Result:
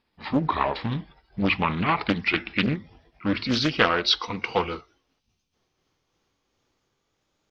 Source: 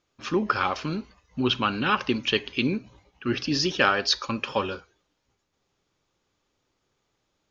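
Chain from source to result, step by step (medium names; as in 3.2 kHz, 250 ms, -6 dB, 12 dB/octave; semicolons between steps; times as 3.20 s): pitch bend over the whole clip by -5.5 st ending unshifted; time-frequency box 5.19–5.54 s, 270–2300 Hz -9 dB; loudspeaker Doppler distortion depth 0.59 ms; trim +2.5 dB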